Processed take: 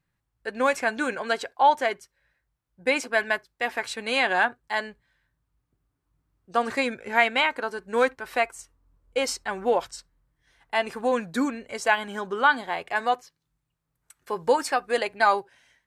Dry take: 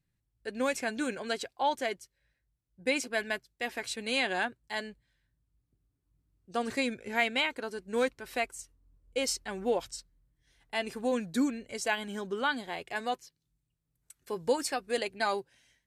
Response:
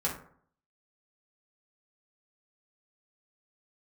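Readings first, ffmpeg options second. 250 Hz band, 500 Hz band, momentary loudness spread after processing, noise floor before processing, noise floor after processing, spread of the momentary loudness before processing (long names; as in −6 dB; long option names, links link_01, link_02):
+2.0 dB, +6.5 dB, 9 LU, −81 dBFS, −79 dBFS, 8 LU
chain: -filter_complex "[0:a]equalizer=frequency=1100:width=0.63:gain=12,asplit=2[link_01][link_02];[1:a]atrim=start_sample=2205,atrim=end_sample=3528[link_03];[link_02][link_03]afir=irnorm=-1:irlink=0,volume=-27dB[link_04];[link_01][link_04]amix=inputs=2:normalize=0"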